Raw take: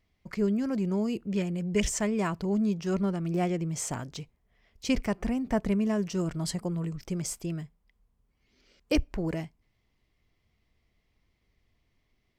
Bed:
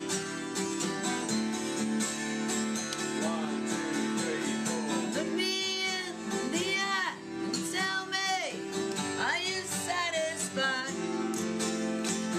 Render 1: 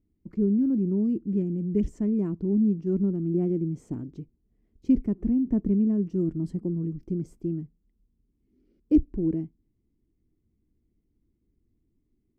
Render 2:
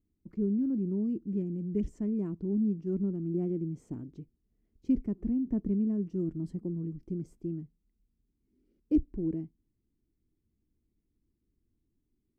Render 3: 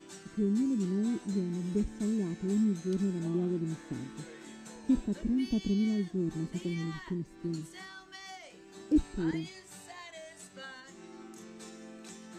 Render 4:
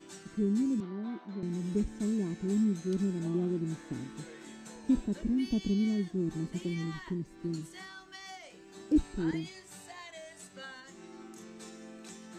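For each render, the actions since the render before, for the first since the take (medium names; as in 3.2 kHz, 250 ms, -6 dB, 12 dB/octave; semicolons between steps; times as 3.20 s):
FFT filter 140 Hz 0 dB, 320 Hz +9 dB, 600 Hz -15 dB, 3.6 kHz -27 dB
trim -6 dB
add bed -16.5 dB
0.80–1.43 s: cabinet simulation 290–3300 Hz, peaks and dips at 300 Hz -7 dB, 440 Hz -7 dB, 680 Hz +4 dB, 1.1 kHz +5 dB, 1.8 kHz -4 dB, 2.7 kHz -8 dB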